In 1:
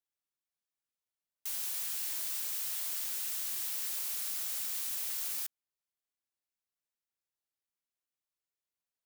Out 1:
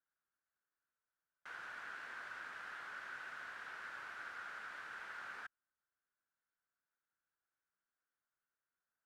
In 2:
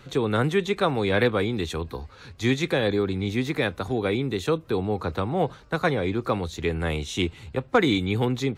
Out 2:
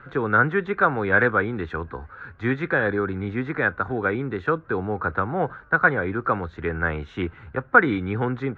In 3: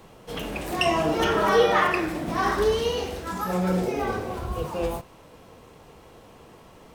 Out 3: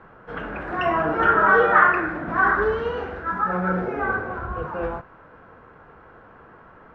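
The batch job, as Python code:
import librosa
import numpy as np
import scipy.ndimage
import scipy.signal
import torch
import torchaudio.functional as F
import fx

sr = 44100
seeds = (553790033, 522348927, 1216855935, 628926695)

y = fx.lowpass_res(x, sr, hz=1500.0, q=5.7)
y = y * librosa.db_to_amplitude(-1.5)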